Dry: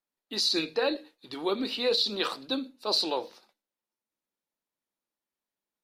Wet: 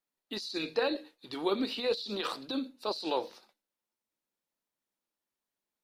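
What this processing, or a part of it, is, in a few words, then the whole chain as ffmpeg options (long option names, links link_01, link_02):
de-esser from a sidechain: -filter_complex "[0:a]asplit=2[link_01][link_02];[link_02]highpass=frequency=4100:width=0.5412,highpass=frequency=4100:width=1.3066,apad=whole_len=257247[link_03];[link_01][link_03]sidechaincompress=threshold=-40dB:ratio=8:attack=2.3:release=43"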